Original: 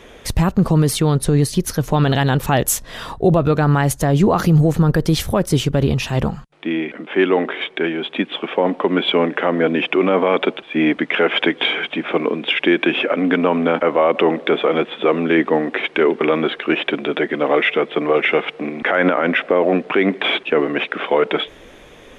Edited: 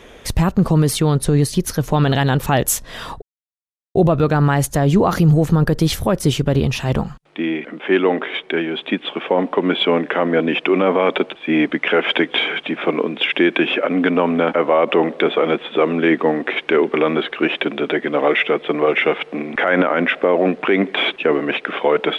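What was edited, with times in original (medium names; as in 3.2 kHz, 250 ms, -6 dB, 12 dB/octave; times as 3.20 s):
3.22 s: insert silence 0.73 s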